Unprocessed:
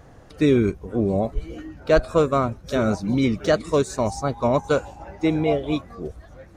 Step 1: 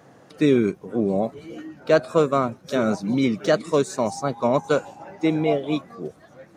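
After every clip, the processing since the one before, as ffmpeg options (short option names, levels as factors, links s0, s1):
-af "highpass=f=140:w=0.5412,highpass=f=140:w=1.3066"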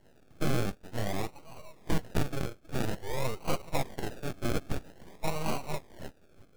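-af "acrusher=samples=36:mix=1:aa=0.000001:lfo=1:lforange=21.6:lforate=0.5,aeval=exprs='abs(val(0))':c=same,volume=0.398"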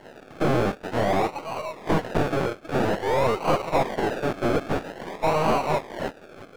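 -filter_complex "[0:a]asplit=2[s0][s1];[s1]highpass=f=720:p=1,volume=22.4,asoftclip=type=tanh:threshold=0.2[s2];[s0][s2]amix=inputs=2:normalize=0,lowpass=f=1500:p=1,volume=0.501,volume=1.5"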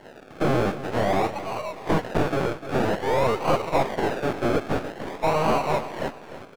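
-af "aecho=1:1:298|596|894:0.224|0.0784|0.0274"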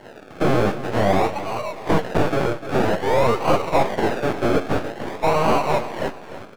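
-af "flanger=delay=8.4:depth=2.7:regen=75:speed=1.2:shape=sinusoidal,volume=2.51"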